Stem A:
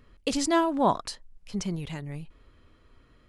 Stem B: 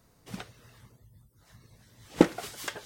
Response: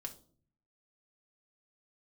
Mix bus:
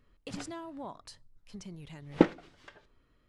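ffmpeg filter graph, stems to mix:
-filter_complex "[0:a]acompressor=threshold=-32dB:ratio=3,volume=-11dB,asplit=3[link_01][link_02][link_03];[link_02]volume=-14.5dB[link_04];[1:a]agate=range=-9dB:threshold=-51dB:ratio=16:detection=peak,lowpass=3400,volume=-3dB,asplit=2[link_05][link_06];[link_06]volume=-16dB[link_07];[link_03]apad=whole_len=125962[link_08];[link_05][link_08]sidechaingate=range=-17dB:threshold=-58dB:ratio=16:detection=peak[link_09];[2:a]atrim=start_sample=2205[link_10];[link_04][link_07]amix=inputs=2:normalize=0[link_11];[link_11][link_10]afir=irnorm=-1:irlink=0[link_12];[link_01][link_09][link_12]amix=inputs=3:normalize=0"

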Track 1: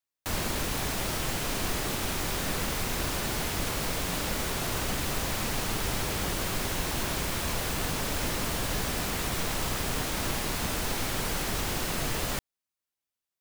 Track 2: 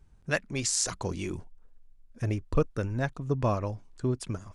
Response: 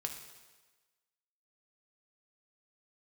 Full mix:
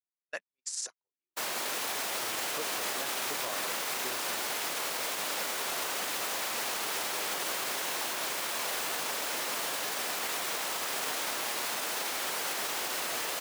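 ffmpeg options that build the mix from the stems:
-filter_complex "[0:a]adelay=1100,volume=3dB[link_01];[1:a]volume=-3.5dB[link_02];[link_01][link_02]amix=inputs=2:normalize=0,highpass=530,agate=range=-58dB:threshold=-32dB:ratio=16:detection=peak,alimiter=limit=-24dB:level=0:latency=1:release=51"

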